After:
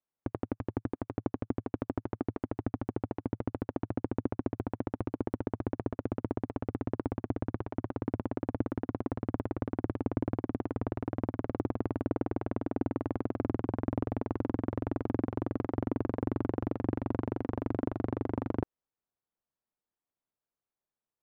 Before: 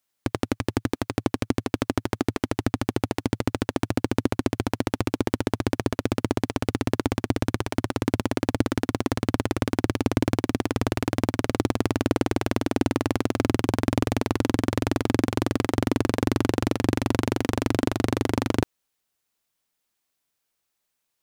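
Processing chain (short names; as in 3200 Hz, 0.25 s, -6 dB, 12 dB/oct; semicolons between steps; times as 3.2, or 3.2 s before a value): LPF 1100 Hz 12 dB/oct; gain -8.5 dB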